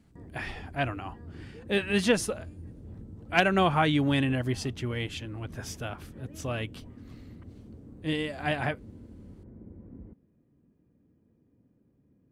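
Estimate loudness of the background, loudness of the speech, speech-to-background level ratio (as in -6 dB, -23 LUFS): -47.0 LUFS, -29.5 LUFS, 17.5 dB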